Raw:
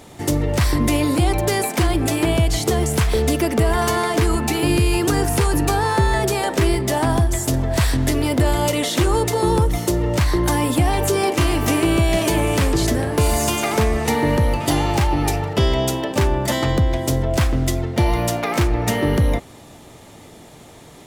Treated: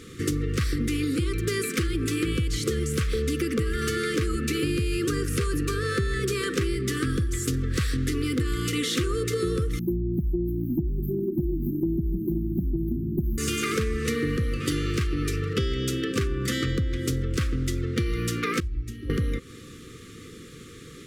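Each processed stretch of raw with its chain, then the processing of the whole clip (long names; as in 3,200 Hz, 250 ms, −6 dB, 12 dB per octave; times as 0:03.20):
0:09.79–0:13.38: linear-phase brick-wall band-stop 380–13,000 Hz + comb filter 5.3 ms, depth 77% + phaser whose notches keep moving one way falling 1 Hz
0:18.60–0:19.10: guitar amp tone stack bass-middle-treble 10-0-1 + mains-hum notches 50/100/150/200/250/300/350/400/450 Hz + comb filter 3.1 ms, depth 83%
whole clip: brick-wall band-stop 520–1,100 Hz; high-shelf EQ 11,000 Hz −9 dB; downward compressor 6 to 1, threshold −23 dBFS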